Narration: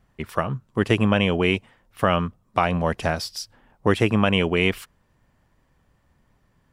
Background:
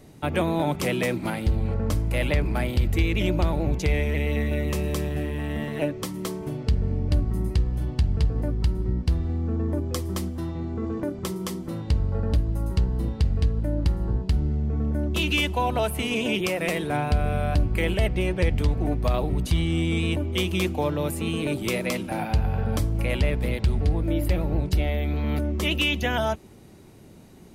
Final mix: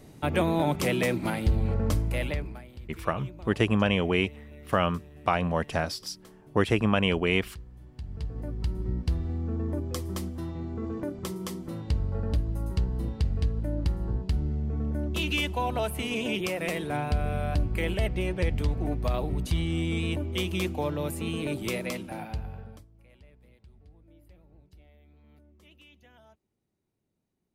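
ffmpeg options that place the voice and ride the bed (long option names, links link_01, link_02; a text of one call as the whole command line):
ffmpeg -i stem1.wav -i stem2.wav -filter_complex "[0:a]adelay=2700,volume=-4.5dB[link_01];[1:a]volume=16dB,afade=type=out:start_time=1.92:duration=0.7:silence=0.0944061,afade=type=in:start_time=7.91:duration=1.01:silence=0.141254,afade=type=out:start_time=21.7:duration=1.15:silence=0.0398107[link_02];[link_01][link_02]amix=inputs=2:normalize=0" out.wav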